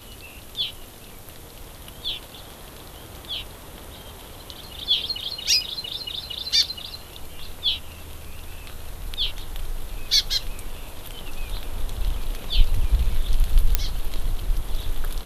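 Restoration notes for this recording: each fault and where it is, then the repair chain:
0:13.75: click −2 dBFS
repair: click removal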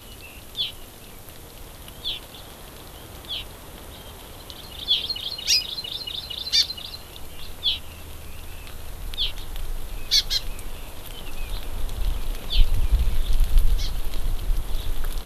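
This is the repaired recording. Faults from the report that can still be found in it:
none of them is left

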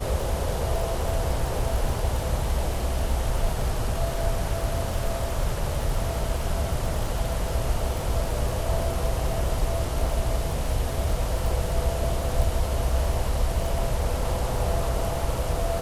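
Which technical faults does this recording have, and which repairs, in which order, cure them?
surface crackle 28 per second −28 dBFS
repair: click removal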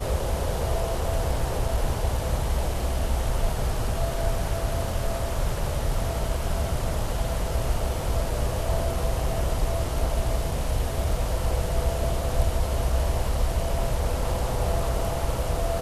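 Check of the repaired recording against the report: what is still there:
none of them is left

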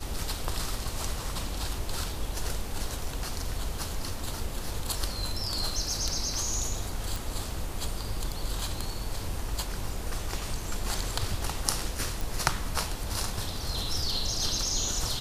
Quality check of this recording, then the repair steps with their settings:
0:07.16: click
0:12.21: click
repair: click removal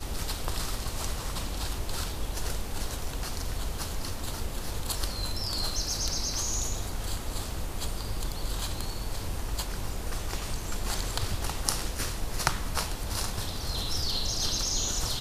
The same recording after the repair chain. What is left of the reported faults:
none of them is left

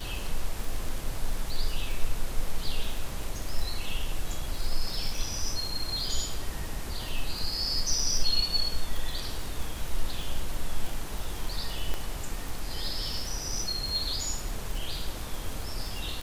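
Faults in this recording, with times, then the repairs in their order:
surface crackle 33 per second −30 dBFS
0:11.94: click −17 dBFS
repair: click removal

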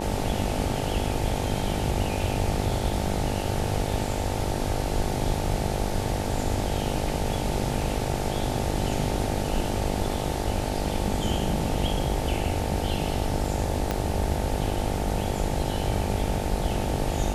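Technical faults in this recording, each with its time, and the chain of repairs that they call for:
mains buzz 50 Hz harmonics 18 −31 dBFS
0:13.91: click −11 dBFS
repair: click removal
hum removal 50 Hz, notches 18

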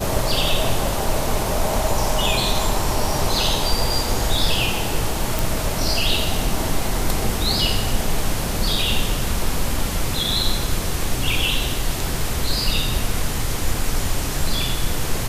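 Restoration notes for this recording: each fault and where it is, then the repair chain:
0:05.39: click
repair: click removal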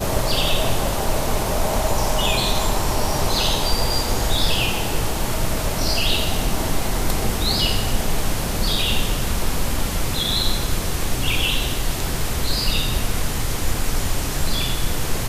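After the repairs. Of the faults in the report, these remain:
none of them is left

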